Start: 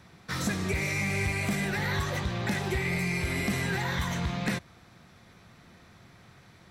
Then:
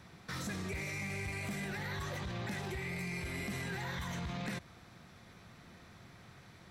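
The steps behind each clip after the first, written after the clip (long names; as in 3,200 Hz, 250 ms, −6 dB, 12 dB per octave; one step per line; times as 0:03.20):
brickwall limiter −30.5 dBFS, peak gain reduction 11 dB
level −1.5 dB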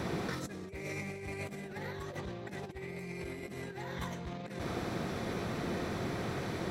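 parametric band 400 Hz +12 dB 1.8 octaves
compressor whose output falls as the input rises −42 dBFS, ratio −0.5
level +6 dB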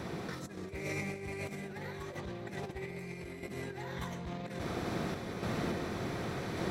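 sample-and-hold tremolo
echo with a time of its own for lows and highs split 1,300 Hz, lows 137 ms, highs 536 ms, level −15 dB
level +2.5 dB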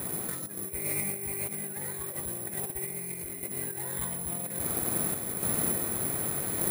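bad sample-rate conversion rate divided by 4×, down filtered, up zero stuff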